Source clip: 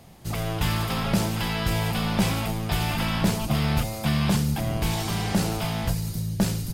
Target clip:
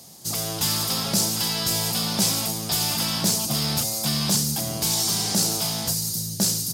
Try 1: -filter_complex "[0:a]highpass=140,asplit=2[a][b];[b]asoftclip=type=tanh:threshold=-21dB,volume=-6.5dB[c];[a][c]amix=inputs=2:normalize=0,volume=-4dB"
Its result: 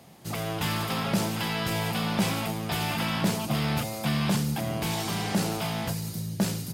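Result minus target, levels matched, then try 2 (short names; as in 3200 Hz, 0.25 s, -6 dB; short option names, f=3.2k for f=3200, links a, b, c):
8000 Hz band -8.5 dB
-filter_complex "[0:a]highpass=140,highshelf=f=3.6k:t=q:w=1.5:g=13.5,asplit=2[a][b];[b]asoftclip=type=tanh:threshold=-21dB,volume=-6.5dB[c];[a][c]amix=inputs=2:normalize=0,volume=-4dB"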